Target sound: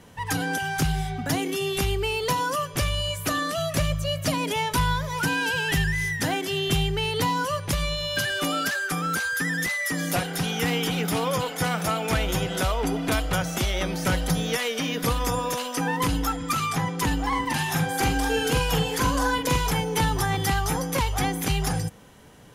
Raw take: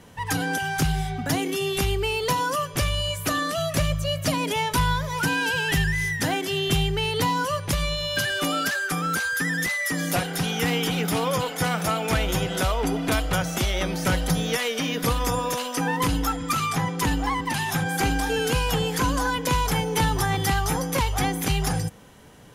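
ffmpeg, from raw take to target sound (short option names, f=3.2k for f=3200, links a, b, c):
-filter_complex "[0:a]asettb=1/sr,asplit=3[a][b][c];[a]atrim=end=17.284[d];[b]atrim=start=17.28:end=19.71,asetpts=PTS-STARTPTS,afade=t=in:d=0.004:c=qsin,afade=t=out:st=2.426:d=0.004:c=qsin,asplit=2[e][f];[f]adelay=44,volume=-4.5dB[g];[e][g]amix=inputs=2:normalize=0,atrim=end_sample=107163[h];[c]atrim=start=19.706[i];[d][h]acrossfade=d=0.004:c1=hsin:c2=qsin[j];[j][i]acrossfade=d=0.004:c1=qsin:c2=hsin,volume=-1dB"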